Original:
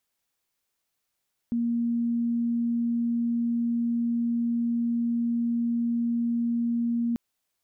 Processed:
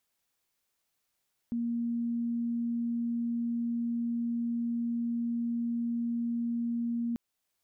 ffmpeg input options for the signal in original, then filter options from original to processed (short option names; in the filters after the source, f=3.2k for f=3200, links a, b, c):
-f lavfi -i "aevalsrc='0.0708*sin(2*PI*235*t)':d=5.64:s=44100"
-af "alimiter=level_in=4.5dB:limit=-24dB:level=0:latency=1:release=483,volume=-4.5dB"